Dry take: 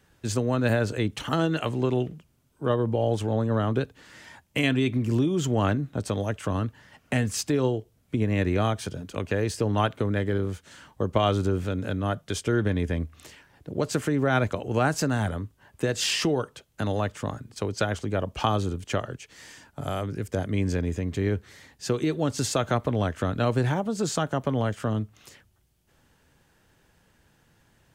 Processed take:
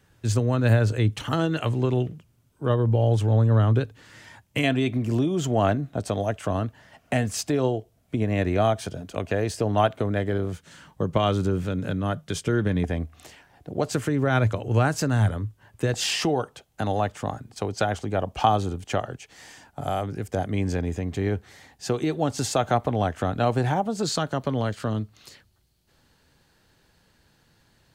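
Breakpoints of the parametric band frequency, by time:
parametric band +10 dB 0.35 octaves
110 Hz
from 0:04.64 680 Hz
from 0:10.52 160 Hz
from 0:12.84 730 Hz
from 0:13.93 110 Hz
from 0:15.94 760 Hz
from 0:24.03 4,300 Hz

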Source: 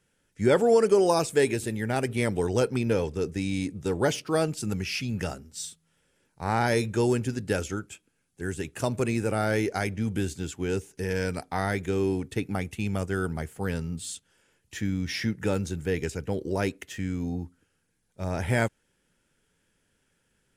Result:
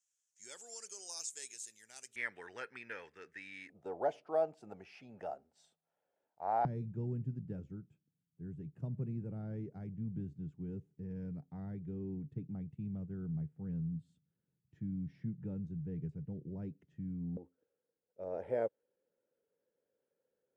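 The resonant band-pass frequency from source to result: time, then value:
resonant band-pass, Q 5.1
6,700 Hz
from 0:02.16 1,800 Hz
from 0:03.70 700 Hz
from 0:06.65 150 Hz
from 0:17.37 510 Hz

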